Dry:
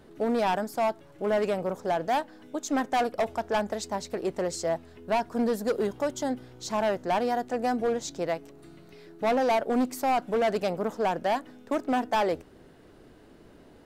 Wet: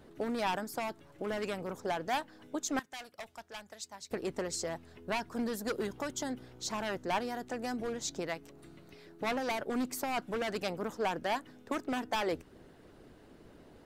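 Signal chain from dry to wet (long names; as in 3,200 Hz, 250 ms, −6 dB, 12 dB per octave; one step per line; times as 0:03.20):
0:02.79–0:04.11: guitar amp tone stack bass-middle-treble 5-5-5
harmonic and percussive parts rebalanced harmonic −7 dB
dynamic equaliser 640 Hz, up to −7 dB, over −42 dBFS, Q 1.3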